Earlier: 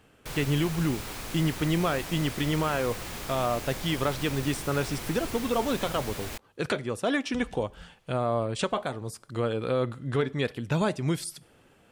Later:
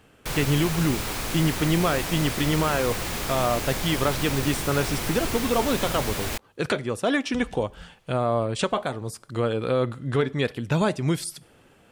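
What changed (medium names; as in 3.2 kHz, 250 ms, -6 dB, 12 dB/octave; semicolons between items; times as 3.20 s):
speech +3.5 dB; background +8.0 dB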